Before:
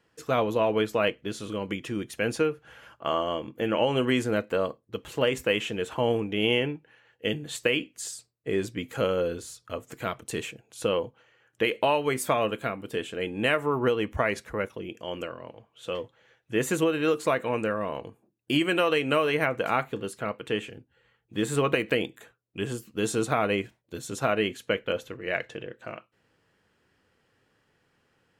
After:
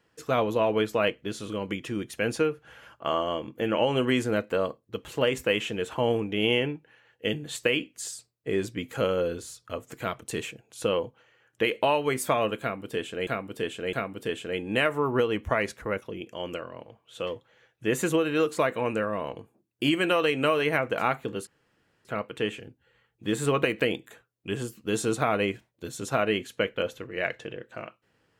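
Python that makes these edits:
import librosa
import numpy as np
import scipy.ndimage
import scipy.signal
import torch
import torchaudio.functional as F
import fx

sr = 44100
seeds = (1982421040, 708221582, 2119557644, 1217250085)

y = fx.edit(x, sr, fx.repeat(start_s=12.61, length_s=0.66, count=3),
    fx.insert_room_tone(at_s=20.15, length_s=0.58), tone=tone)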